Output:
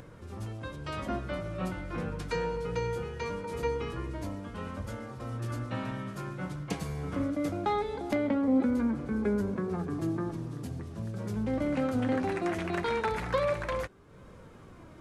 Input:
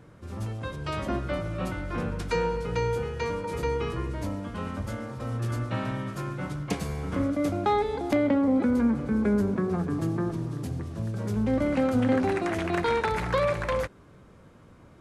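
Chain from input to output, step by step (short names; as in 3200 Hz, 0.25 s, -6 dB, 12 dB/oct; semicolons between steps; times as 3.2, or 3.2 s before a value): upward compressor, threshold -37 dBFS; flange 0.21 Hz, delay 1.8 ms, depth 5.2 ms, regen +68%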